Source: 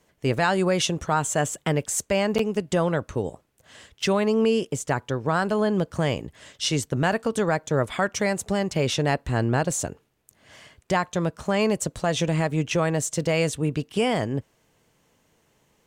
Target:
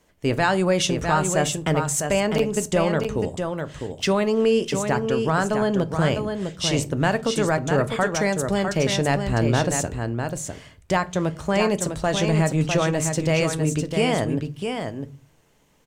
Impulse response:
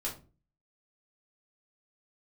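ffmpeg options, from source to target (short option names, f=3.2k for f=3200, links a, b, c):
-filter_complex "[0:a]aecho=1:1:653:0.501,asplit=2[a][b];[1:a]atrim=start_sample=2205,lowshelf=f=120:g=11.5[c];[b][c]afir=irnorm=-1:irlink=0,volume=-13dB[d];[a][d]amix=inputs=2:normalize=0"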